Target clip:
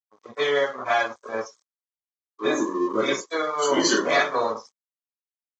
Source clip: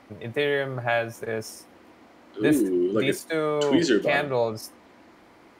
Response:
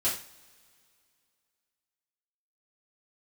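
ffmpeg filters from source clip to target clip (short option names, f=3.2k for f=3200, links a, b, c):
-filter_complex "[1:a]atrim=start_sample=2205,afade=t=out:st=0.31:d=0.01,atrim=end_sample=14112[a];[0:a][a]afir=irnorm=-1:irlink=0,aeval=exprs='sgn(val(0))*max(abs(val(0))-0.0398,0)':c=same,highpass=330,equalizer=f=360:t=q:w=4:g=-6,equalizer=f=640:t=q:w=4:g=-4,equalizer=f=1.1k:t=q:w=4:g=10,equalizer=f=1.7k:t=q:w=4:g=-3,equalizer=f=2.7k:t=q:w=4:g=-9,equalizer=f=6.3k:t=q:w=4:g=6,lowpass=f=7.1k:w=0.5412,lowpass=f=7.1k:w=1.3066,afftdn=nr=15:nf=-32,aemphasis=mode=production:type=50fm,volume=-2.5dB" -ar 24000 -c:a aac -b:a 24k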